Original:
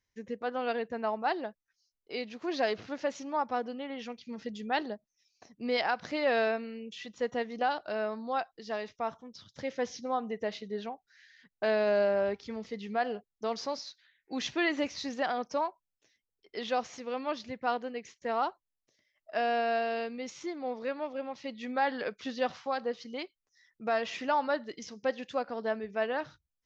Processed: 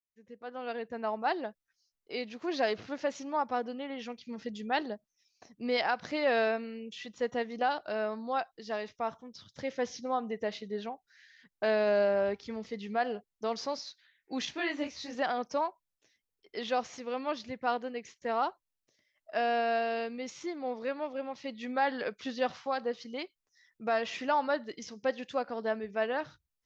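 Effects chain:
fade in at the beginning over 1.29 s
0:14.45–0:15.15: micro pitch shift up and down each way 47 cents

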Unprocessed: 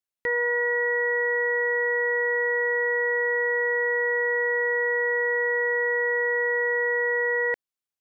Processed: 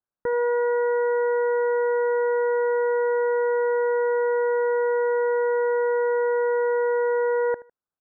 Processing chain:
Butterworth low-pass 1,600 Hz 72 dB per octave
on a send: repeating echo 77 ms, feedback 27%, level −19 dB
on the sum: level +4.5 dB

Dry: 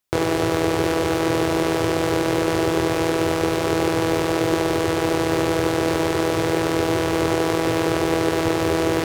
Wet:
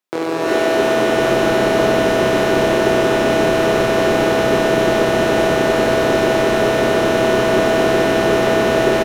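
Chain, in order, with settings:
high-pass filter 190 Hz 24 dB per octave
high-shelf EQ 4,800 Hz −8.5 dB
echo with shifted repeats 334 ms, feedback 60%, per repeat −98 Hz, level −8.5 dB
reverb whose tail is shaped and stops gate 420 ms rising, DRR −7 dB
level −1 dB

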